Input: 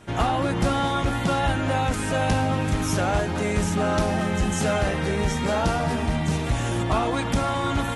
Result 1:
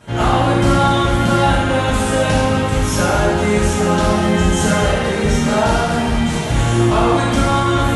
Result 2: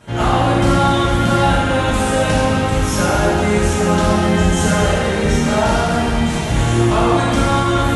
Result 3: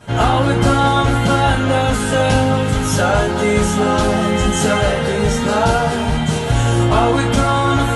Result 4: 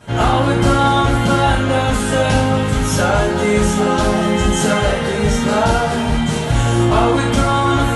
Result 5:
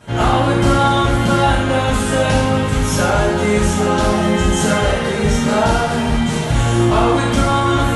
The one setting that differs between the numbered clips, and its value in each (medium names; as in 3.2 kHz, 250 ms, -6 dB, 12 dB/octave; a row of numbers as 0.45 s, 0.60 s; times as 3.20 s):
gated-style reverb, gate: 330 ms, 480 ms, 80 ms, 130 ms, 210 ms